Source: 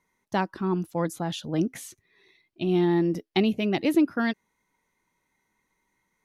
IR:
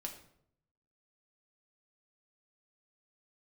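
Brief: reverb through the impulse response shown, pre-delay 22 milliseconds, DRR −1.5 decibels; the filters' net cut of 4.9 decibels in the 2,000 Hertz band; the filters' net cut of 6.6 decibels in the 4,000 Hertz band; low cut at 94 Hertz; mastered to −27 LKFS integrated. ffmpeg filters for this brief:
-filter_complex "[0:a]highpass=94,equalizer=frequency=2000:width_type=o:gain=-4.5,equalizer=frequency=4000:width_type=o:gain=-7,asplit=2[link_01][link_02];[1:a]atrim=start_sample=2205,adelay=22[link_03];[link_02][link_03]afir=irnorm=-1:irlink=0,volume=3.5dB[link_04];[link_01][link_04]amix=inputs=2:normalize=0,volume=-5dB"

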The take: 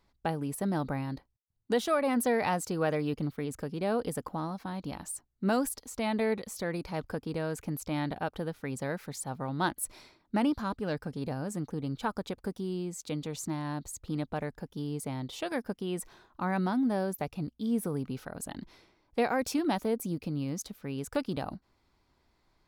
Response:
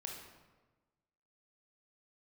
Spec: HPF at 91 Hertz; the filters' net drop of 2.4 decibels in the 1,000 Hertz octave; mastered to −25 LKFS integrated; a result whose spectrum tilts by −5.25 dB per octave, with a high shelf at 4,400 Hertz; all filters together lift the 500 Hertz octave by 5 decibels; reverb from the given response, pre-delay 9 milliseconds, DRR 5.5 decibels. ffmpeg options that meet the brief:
-filter_complex "[0:a]highpass=91,equalizer=frequency=500:width_type=o:gain=7.5,equalizer=frequency=1000:width_type=o:gain=-6.5,highshelf=frequency=4400:gain=-8,asplit=2[link_01][link_02];[1:a]atrim=start_sample=2205,adelay=9[link_03];[link_02][link_03]afir=irnorm=-1:irlink=0,volume=-3.5dB[link_04];[link_01][link_04]amix=inputs=2:normalize=0,volume=5dB"

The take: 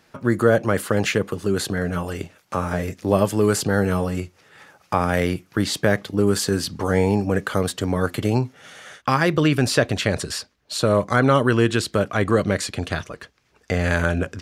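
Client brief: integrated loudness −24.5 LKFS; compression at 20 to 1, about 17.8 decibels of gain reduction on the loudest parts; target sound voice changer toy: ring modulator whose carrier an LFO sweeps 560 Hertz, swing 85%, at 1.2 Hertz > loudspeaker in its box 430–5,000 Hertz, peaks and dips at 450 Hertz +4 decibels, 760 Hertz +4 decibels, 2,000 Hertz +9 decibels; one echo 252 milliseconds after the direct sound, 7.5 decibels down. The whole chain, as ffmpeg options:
ffmpeg -i in.wav -af "acompressor=threshold=-29dB:ratio=20,aecho=1:1:252:0.422,aeval=exprs='val(0)*sin(2*PI*560*n/s+560*0.85/1.2*sin(2*PI*1.2*n/s))':channel_layout=same,highpass=430,equalizer=frequency=450:width_type=q:width=4:gain=4,equalizer=frequency=760:width_type=q:width=4:gain=4,equalizer=frequency=2000:width_type=q:width=4:gain=9,lowpass=frequency=5000:width=0.5412,lowpass=frequency=5000:width=1.3066,volume=11.5dB" out.wav

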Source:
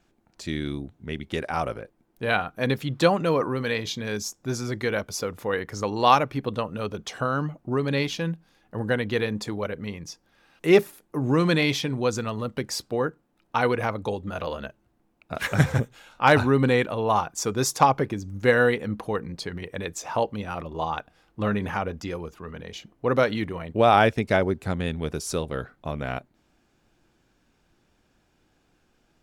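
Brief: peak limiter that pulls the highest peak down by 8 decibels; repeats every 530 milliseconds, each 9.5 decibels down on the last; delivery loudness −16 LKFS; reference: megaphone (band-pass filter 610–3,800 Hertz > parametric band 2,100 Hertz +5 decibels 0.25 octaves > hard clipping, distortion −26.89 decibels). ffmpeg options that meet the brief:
ffmpeg -i in.wav -af "alimiter=limit=-12.5dB:level=0:latency=1,highpass=610,lowpass=3800,equalizer=frequency=2100:width_type=o:width=0.25:gain=5,aecho=1:1:530|1060|1590|2120:0.335|0.111|0.0365|0.012,asoftclip=type=hard:threshold=-16dB,volume=15dB" out.wav

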